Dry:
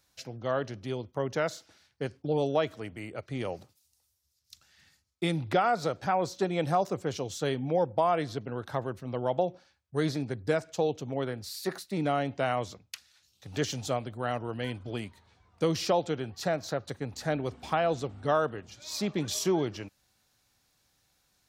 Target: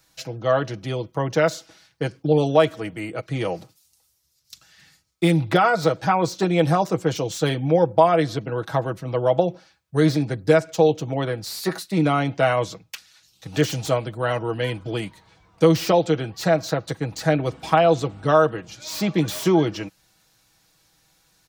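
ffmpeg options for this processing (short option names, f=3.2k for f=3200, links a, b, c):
-filter_complex "[0:a]aecho=1:1:6.2:0.59,acrossover=split=420|2900[a][b][c];[c]aeval=exprs='0.0168*(abs(mod(val(0)/0.0168+3,4)-2)-1)':c=same[d];[a][b][d]amix=inputs=3:normalize=0,volume=8dB"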